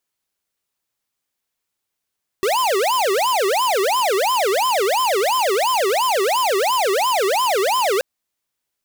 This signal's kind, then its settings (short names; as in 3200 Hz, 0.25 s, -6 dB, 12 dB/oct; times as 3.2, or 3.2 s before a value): siren wail 378–1040 Hz 2.9/s square -18 dBFS 5.58 s